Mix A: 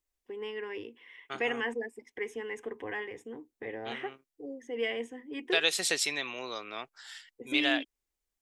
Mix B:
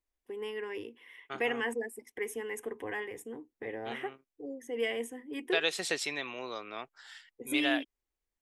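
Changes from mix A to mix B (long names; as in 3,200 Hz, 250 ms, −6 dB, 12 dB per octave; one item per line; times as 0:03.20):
first voice: remove high-frequency loss of the air 160 metres
master: add high-shelf EQ 3,300 Hz −9 dB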